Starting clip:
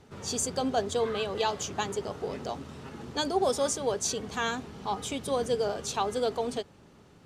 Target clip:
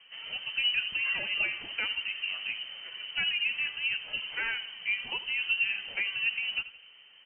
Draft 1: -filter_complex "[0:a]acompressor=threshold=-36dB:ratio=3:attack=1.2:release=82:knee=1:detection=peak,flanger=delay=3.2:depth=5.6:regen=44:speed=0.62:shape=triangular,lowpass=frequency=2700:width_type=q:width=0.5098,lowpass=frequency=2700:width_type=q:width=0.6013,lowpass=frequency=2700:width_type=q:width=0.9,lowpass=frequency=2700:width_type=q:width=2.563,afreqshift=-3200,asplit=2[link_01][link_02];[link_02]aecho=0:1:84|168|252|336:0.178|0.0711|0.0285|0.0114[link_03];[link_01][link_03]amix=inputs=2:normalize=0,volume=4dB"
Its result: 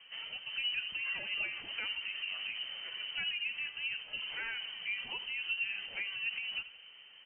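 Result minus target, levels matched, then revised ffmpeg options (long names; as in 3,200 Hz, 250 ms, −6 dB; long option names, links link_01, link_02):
downward compressor: peak gain reduction +7.5 dB
-filter_complex "[0:a]acompressor=threshold=-25dB:ratio=3:attack=1.2:release=82:knee=1:detection=peak,flanger=delay=3.2:depth=5.6:regen=44:speed=0.62:shape=triangular,lowpass=frequency=2700:width_type=q:width=0.5098,lowpass=frequency=2700:width_type=q:width=0.6013,lowpass=frequency=2700:width_type=q:width=0.9,lowpass=frequency=2700:width_type=q:width=2.563,afreqshift=-3200,asplit=2[link_01][link_02];[link_02]aecho=0:1:84|168|252|336:0.178|0.0711|0.0285|0.0114[link_03];[link_01][link_03]amix=inputs=2:normalize=0,volume=4dB"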